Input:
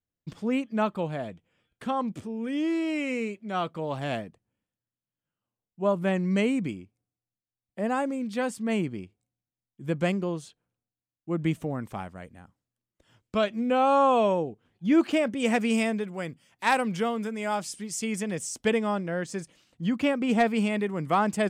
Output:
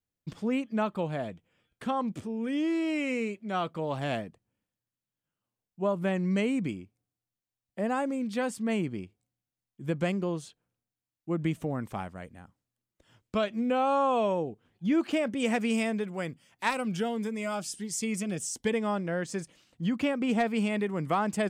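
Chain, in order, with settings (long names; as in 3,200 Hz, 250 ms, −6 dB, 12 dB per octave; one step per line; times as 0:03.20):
downward compressor 2 to 1, threshold −26 dBFS, peak gain reduction 6 dB
0:16.70–0:18.74: phaser whose notches keep moving one way rising 1.4 Hz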